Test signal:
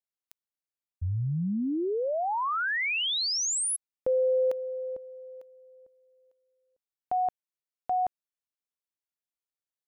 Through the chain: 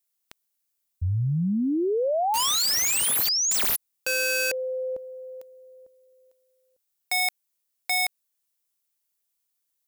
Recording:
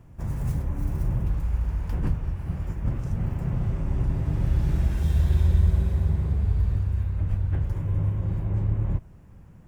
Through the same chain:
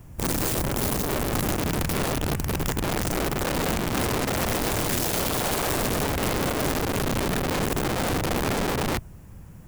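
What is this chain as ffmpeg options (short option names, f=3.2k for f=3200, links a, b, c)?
-filter_complex "[0:a]acrossover=split=3300[a][b];[b]acompressor=threshold=-39dB:ratio=4:attack=1:release=60[c];[a][c]amix=inputs=2:normalize=0,crystalizer=i=2.5:c=0,aeval=exprs='(mod(17.8*val(0)+1,2)-1)/17.8':c=same,volume=4.5dB"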